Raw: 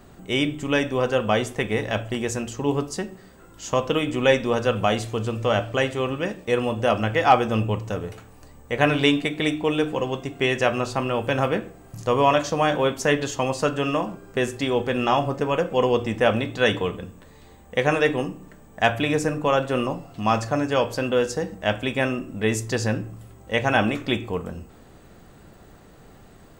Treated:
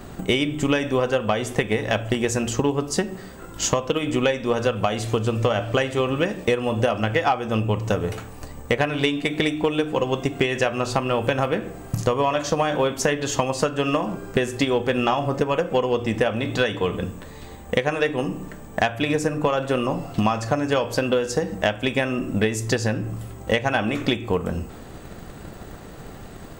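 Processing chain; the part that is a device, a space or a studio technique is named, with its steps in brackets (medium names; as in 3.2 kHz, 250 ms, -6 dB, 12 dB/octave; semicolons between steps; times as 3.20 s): drum-bus smash (transient shaper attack +8 dB, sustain +1 dB; compression 10:1, threshold -25 dBFS, peak gain reduction 20 dB; saturation -16 dBFS, distortion -21 dB); trim +8.5 dB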